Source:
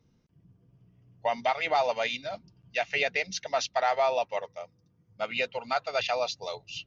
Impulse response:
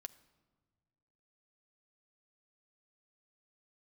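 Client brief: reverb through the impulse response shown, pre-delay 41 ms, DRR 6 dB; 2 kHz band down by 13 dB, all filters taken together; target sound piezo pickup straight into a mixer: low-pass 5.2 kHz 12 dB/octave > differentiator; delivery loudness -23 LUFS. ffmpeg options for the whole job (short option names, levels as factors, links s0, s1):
-filter_complex "[0:a]equalizer=f=2000:t=o:g=-3.5,asplit=2[s0][s1];[1:a]atrim=start_sample=2205,adelay=41[s2];[s1][s2]afir=irnorm=-1:irlink=0,volume=0.891[s3];[s0][s3]amix=inputs=2:normalize=0,lowpass=5200,aderivative,volume=9.44"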